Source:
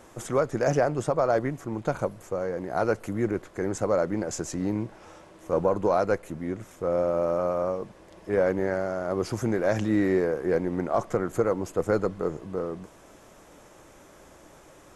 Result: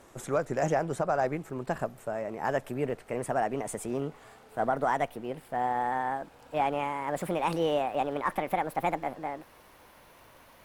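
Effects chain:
gliding playback speed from 105% → 176%
surface crackle 54 per second −46 dBFS
level −4 dB

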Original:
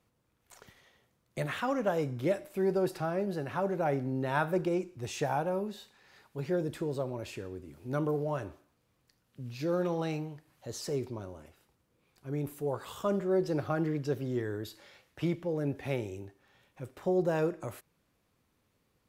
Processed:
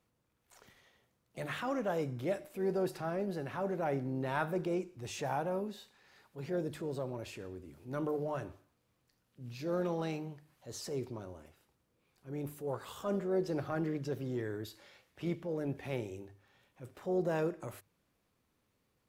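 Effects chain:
transient designer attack −5 dB, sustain 0 dB
mains-hum notches 50/100/150 Hz
pitch-shifted copies added +4 semitones −18 dB
level −3 dB

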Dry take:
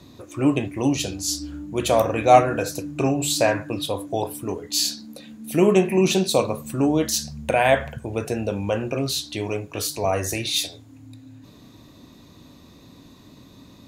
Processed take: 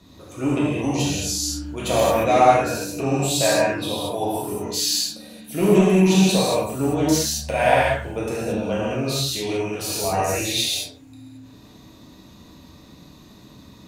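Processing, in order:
in parallel at −4 dB: hard clipping −12.5 dBFS, distortion −13 dB
on the sum: reverb whose tail is shaped and stops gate 250 ms flat, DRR −7.5 dB
level −10 dB

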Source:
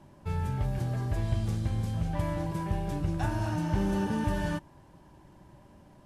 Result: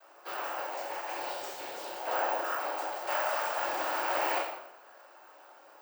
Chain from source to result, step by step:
elliptic high-pass filter 500 Hz, stop band 40 dB
cochlear-implant simulation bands 8
convolution reverb RT60 0.85 s, pre-delay 14 ms, DRR −2 dB
bad sample-rate conversion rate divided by 2×, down none, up zero stuff
wrong playback speed 24 fps film run at 25 fps
level +2.5 dB

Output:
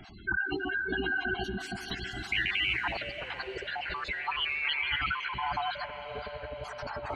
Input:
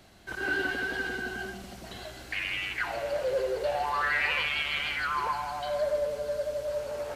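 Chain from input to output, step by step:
time-frequency cells dropped at random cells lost 35%
compressor whose output falls as the input rises −37 dBFS, ratio −1
parametric band 540 Hz −14.5 dB 0.44 octaves
gate on every frequency bin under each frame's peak −15 dB strong
feedback delay with all-pass diffusion 519 ms, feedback 56%, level −12 dB
level +6 dB

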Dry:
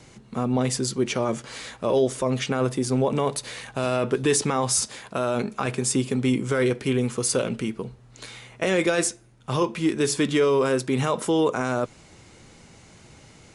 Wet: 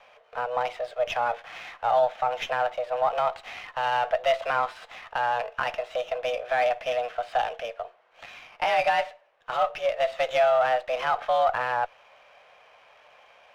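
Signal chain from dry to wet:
single-sideband voice off tune +240 Hz 320–3,100 Hz
windowed peak hold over 3 samples

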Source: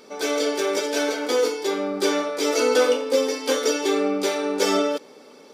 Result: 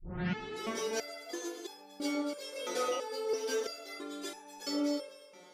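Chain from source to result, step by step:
turntable start at the beginning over 0.71 s
delay that swaps between a low-pass and a high-pass 123 ms, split 1,200 Hz, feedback 55%, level −2 dB
step-sequenced resonator 3 Hz 180–840 Hz
level +1 dB

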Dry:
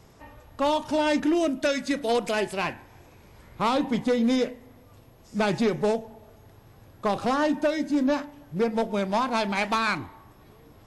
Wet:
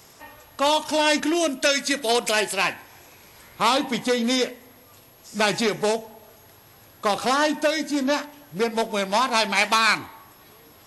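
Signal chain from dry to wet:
spectral tilt +3 dB per octave
level +4.5 dB

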